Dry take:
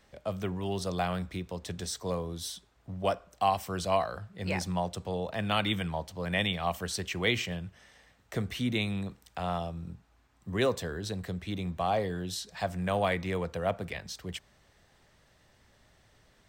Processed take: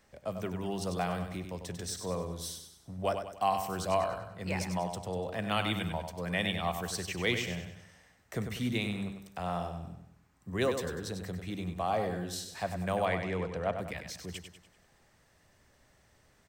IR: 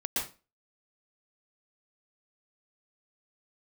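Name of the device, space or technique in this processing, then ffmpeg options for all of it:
exciter from parts: -filter_complex "[0:a]asplit=2[link_01][link_02];[link_02]highpass=frequency=3300:width=0.5412,highpass=frequency=3300:width=1.3066,asoftclip=type=tanh:threshold=-37dB,volume=-6dB[link_03];[link_01][link_03]amix=inputs=2:normalize=0,asettb=1/sr,asplit=3[link_04][link_05][link_06];[link_04]atrim=end=13.054[link_07];[link_05]atrim=start=13.05:end=13.76,asetpts=PTS-STARTPTS,afade=type=in:duration=0.004:curve=qsin,afade=type=out:start_time=0.706:duration=0.004:curve=qsin,lowpass=5700[link_08];[link_06]atrim=start=13.756[link_09];[link_07][link_08]acrossfade=duration=0.004:curve1=hsin:curve2=qsin[link_10];[link_10][link_09]acrossfade=duration=0.004:curve1=qsin:curve2=hsin,bandreject=frequency=50:width_type=h:width=6,bandreject=frequency=100:width_type=h:width=6,aecho=1:1:97|194|291|388|485:0.422|0.186|0.0816|0.0359|0.0158,volume=-2.5dB"

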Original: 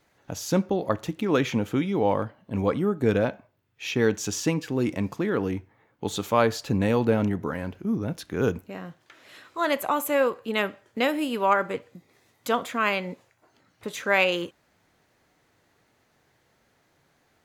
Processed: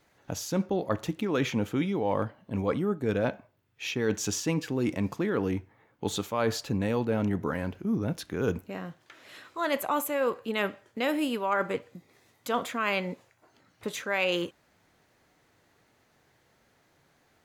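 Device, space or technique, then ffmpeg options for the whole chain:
compression on the reversed sound: -af "areverse,acompressor=threshold=-23dB:ratio=10,areverse"

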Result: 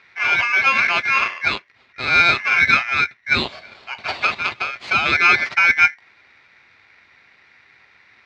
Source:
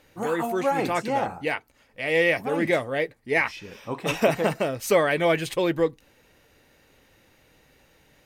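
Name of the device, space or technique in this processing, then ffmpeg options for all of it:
ring modulator pedal into a guitar cabinet: -filter_complex "[0:a]asettb=1/sr,asplit=3[link_01][link_02][link_03];[link_01]atrim=end=3.354[link_04];[link_02]atrim=start=3.35:end=5.06,asetpts=PTS-STARTPTS,afade=type=in:duration=0.004:curve=qsin,afade=type=out:start_time=1.706:duration=0.004:curve=qsin,highpass=frequency=1000:poles=1[link_05];[link_03]atrim=start=5.056[link_06];[link_04][link_05]acrossfade=duration=0.004:curve1=hsin:curve2=qsin[link_07];[link_07][link_06]acrossfade=duration=0.004:curve1=qsin:curve2=hsin,aeval=exprs='val(0)*sgn(sin(2*PI*1900*n/s))':channel_layout=same,highpass=93,equalizer=frequency=170:width_type=q:width=4:gain=-4,equalizer=frequency=300:width_type=q:width=4:gain=-7,equalizer=frequency=480:width_type=q:width=4:gain=-4,equalizer=frequency=2200:width_type=q:width=4:gain=7,equalizer=frequency=3200:width_type=q:width=4:gain=-4,lowpass=frequency=4000:width=0.5412,lowpass=frequency=4000:width=1.3066,volume=6dB"

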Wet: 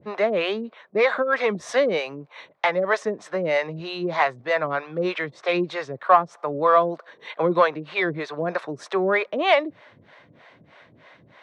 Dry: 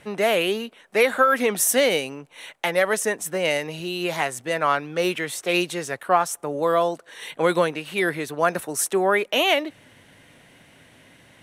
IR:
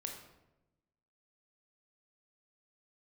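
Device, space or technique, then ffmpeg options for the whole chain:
guitar amplifier with harmonic tremolo: -filter_complex "[0:a]acrossover=split=450[link_01][link_02];[link_01]aeval=exprs='val(0)*(1-1/2+1/2*cos(2*PI*3.2*n/s))':channel_layout=same[link_03];[link_02]aeval=exprs='val(0)*(1-1/2-1/2*cos(2*PI*3.2*n/s))':channel_layout=same[link_04];[link_03][link_04]amix=inputs=2:normalize=0,asoftclip=type=tanh:threshold=-13dB,highpass=100,equalizer=frequency=260:width_type=q:width=4:gain=-4,equalizer=frequency=610:width_type=q:width=4:gain=4,equalizer=frequency=1100:width_type=q:width=4:gain=7,equalizer=frequency=2900:width_type=q:width=4:gain=-8,lowpass=frequency=4300:width=0.5412,lowpass=frequency=4300:width=1.3066,volume=5dB"

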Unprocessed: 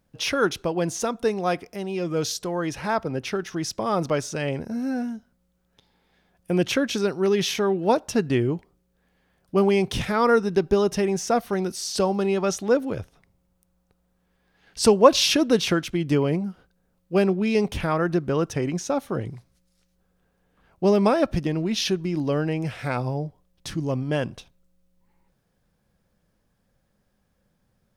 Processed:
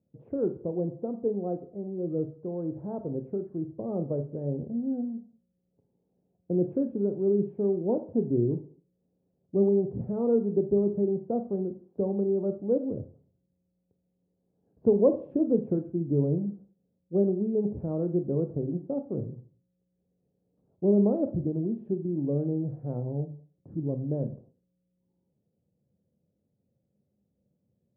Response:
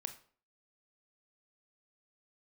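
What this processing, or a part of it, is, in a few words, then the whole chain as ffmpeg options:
next room: -filter_complex "[0:a]highpass=frequency=83:width=0.5412,highpass=frequency=83:width=1.3066,lowpass=frequency=540:width=0.5412,lowpass=frequency=540:width=1.3066[link_01];[1:a]atrim=start_sample=2205[link_02];[link_01][link_02]afir=irnorm=-1:irlink=0,volume=-1.5dB"

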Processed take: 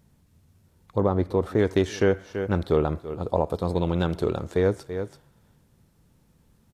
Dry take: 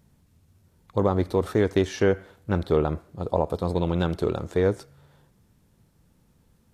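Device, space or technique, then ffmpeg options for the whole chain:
ducked delay: -filter_complex "[0:a]asettb=1/sr,asplit=3[link_01][link_02][link_03];[link_01]atrim=end=0.974[link_04];[link_02]atrim=start=0.97:end=1.59,asetpts=PTS-STARTPTS,afade=type=in:duration=0.004:curve=qsin,afade=type=out:start_time=0.616:duration=0.004:curve=qsin,highshelf=frequency=2500:gain=-9[link_05];[link_03]atrim=start=1.586[link_06];[link_04][link_05]acrossfade=duration=0.004:curve1=hsin:curve2=qsin[link_07];[link_07][link_06]acrossfade=duration=0.004:curve1=qsin:curve2=hsin,asplit=3[link_08][link_09][link_10];[link_09]adelay=333,volume=-8dB[link_11];[link_10]apad=whole_len=311511[link_12];[link_11][link_12]sidechaincompress=threshold=-49dB:ratio=3:attack=30:release=127[link_13];[link_08][link_13]amix=inputs=2:normalize=0"

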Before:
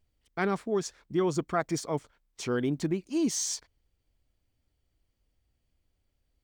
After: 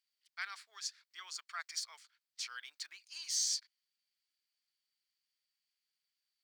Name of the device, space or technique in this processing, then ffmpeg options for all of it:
headphones lying on a table: -af "highpass=frequency=1500:width=0.5412,highpass=frequency=1500:width=1.3066,equalizer=frequency=4600:width_type=o:width=0.45:gain=10,volume=-5dB"

